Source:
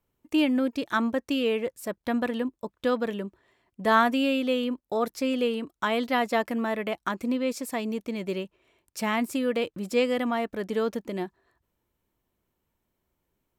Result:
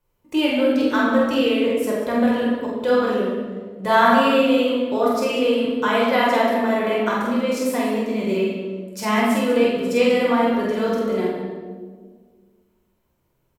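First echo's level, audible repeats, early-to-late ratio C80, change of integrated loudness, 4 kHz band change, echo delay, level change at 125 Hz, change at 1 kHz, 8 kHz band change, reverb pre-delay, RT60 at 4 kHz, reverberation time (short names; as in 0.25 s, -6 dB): -2.0 dB, 1, 2.0 dB, +8.0 dB, +7.0 dB, 47 ms, n/a, +8.0 dB, +6.0 dB, 5 ms, 0.95 s, 1.6 s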